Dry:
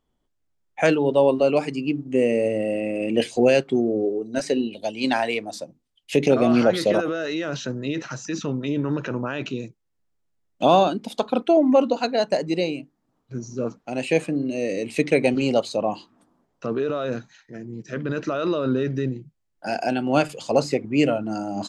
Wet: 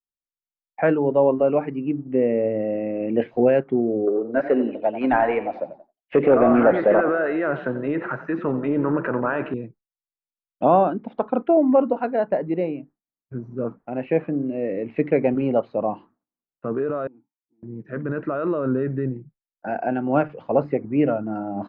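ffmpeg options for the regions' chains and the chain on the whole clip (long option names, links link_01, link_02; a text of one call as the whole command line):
ffmpeg -i in.wav -filter_complex "[0:a]asettb=1/sr,asplit=3[link_01][link_02][link_03];[link_01]atrim=end=4.074[link_04];[link_02]atrim=start=4.07:end=9.54,asetpts=PTS-STARTPTS,afade=type=in:duration=0.004:curve=qsin,afade=type=out:start_time=5.466:duration=0.004:curve=qsin,asplit=2[link_05][link_06];[link_06]highpass=frequency=720:poles=1,volume=16dB,asoftclip=type=tanh:threshold=-5.5dB[link_07];[link_05][link_07]amix=inputs=2:normalize=0,lowpass=frequency=1700:poles=1,volume=-6dB,asplit=5[link_08][link_09][link_10][link_11][link_12];[link_09]adelay=89,afreqshift=31,volume=-12.5dB[link_13];[link_10]adelay=178,afreqshift=62,volume=-20.9dB[link_14];[link_11]adelay=267,afreqshift=93,volume=-29.3dB[link_15];[link_12]adelay=356,afreqshift=124,volume=-37.7dB[link_16];[link_08][link_13][link_14][link_15][link_16]amix=inputs=5:normalize=0,atrim=end_sample=241227[link_17];[link_03]atrim=start=9.536[link_18];[link_04][link_17]acrossfade=duration=0.004:curve1=hsin:curve2=qsin[link_19];[link_19][link_18]acrossfade=duration=0.004:curve1=qsin:curve2=hsin,asettb=1/sr,asplit=3[link_20][link_21][link_22];[link_20]atrim=end=17.074[link_23];[link_21]atrim=start=17.07:end=17.63,asetpts=PTS-STARTPTS,afade=type=in:duration=0.004:curve=qsin,afade=type=out:start_time=0.556:duration=0.004:curve=qsin,tiltshelf=frequency=920:gain=6,acompressor=threshold=-38dB:ratio=4:attack=3.2:release=140:knee=1:detection=peak,asplit=3[link_24][link_25][link_26];[link_24]bandpass=frequency=300:width_type=q:width=8,volume=0dB[link_27];[link_25]bandpass=frequency=870:width_type=q:width=8,volume=-6dB[link_28];[link_26]bandpass=frequency=2240:width_type=q:width=8,volume=-9dB[link_29];[link_27][link_28][link_29]amix=inputs=3:normalize=0[link_30];[link_22]atrim=start=17.626[link_31];[link_23][link_30]acrossfade=duration=0.004:curve1=hsin:curve2=qsin[link_32];[link_32][link_31]acrossfade=duration=0.004:curve1=qsin:curve2=hsin,lowpass=frequency=1800:width=0.5412,lowpass=frequency=1800:width=1.3066,agate=range=-33dB:threshold=-41dB:ratio=3:detection=peak" out.wav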